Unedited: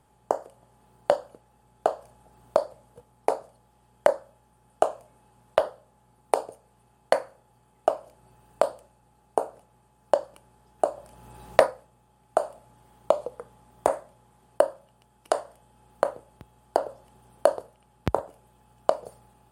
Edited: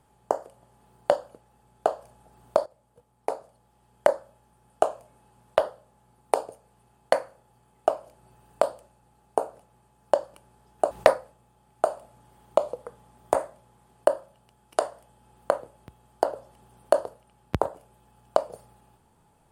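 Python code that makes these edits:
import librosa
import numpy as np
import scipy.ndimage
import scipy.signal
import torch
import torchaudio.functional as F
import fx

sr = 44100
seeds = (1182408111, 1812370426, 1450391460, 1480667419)

y = fx.edit(x, sr, fx.fade_in_from(start_s=2.66, length_s=1.44, floor_db=-12.0),
    fx.cut(start_s=10.91, length_s=0.53), tone=tone)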